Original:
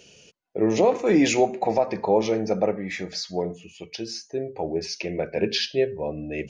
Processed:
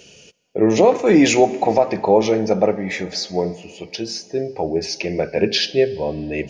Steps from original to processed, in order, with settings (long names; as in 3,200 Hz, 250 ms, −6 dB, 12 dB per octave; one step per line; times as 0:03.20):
on a send: high-pass filter 150 Hz + convolution reverb RT60 4.1 s, pre-delay 104 ms, DRR 20 dB
on the sum: level +6 dB